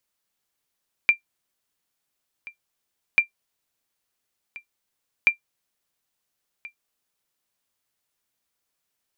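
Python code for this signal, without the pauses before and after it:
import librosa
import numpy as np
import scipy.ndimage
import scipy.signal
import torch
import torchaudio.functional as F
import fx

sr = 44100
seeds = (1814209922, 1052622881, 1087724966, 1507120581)

y = fx.sonar_ping(sr, hz=2370.0, decay_s=0.11, every_s=2.09, pings=3, echo_s=1.38, echo_db=-22.0, level_db=-7.0)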